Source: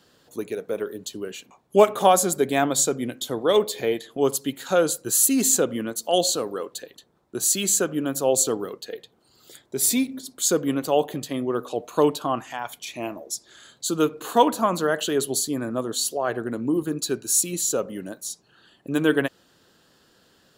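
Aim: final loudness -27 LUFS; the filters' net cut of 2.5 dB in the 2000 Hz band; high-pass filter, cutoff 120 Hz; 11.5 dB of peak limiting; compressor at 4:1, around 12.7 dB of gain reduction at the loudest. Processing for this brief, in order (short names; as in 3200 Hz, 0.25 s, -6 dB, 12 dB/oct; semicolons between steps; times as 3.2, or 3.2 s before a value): HPF 120 Hz; bell 2000 Hz -3.5 dB; compressor 4:1, threshold -26 dBFS; gain +8 dB; limiter -17 dBFS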